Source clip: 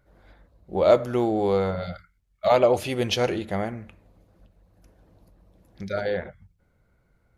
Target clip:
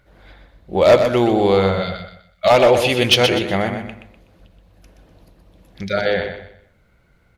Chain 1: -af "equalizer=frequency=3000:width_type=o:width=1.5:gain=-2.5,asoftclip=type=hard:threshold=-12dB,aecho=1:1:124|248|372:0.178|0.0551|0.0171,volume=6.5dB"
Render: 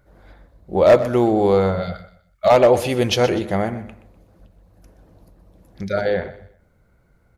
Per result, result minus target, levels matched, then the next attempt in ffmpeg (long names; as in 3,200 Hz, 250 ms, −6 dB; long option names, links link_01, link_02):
4,000 Hz band −8.0 dB; echo-to-direct −7.5 dB
-af "equalizer=frequency=3000:width_type=o:width=1.5:gain=8.5,asoftclip=type=hard:threshold=-12dB,aecho=1:1:124|248|372:0.178|0.0551|0.0171,volume=6.5dB"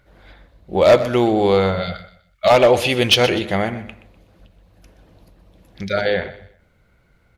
echo-to-direct −7.5 dB
-af "equalizer=frequency=3000:width_type=o:width=1.5:gain=8.5,asoftclip=type=hard:threshold=-12dB,aecho=1:1:124|248|372|496:0.422|0.131|0.0405|0.0126,volume=6.5dB"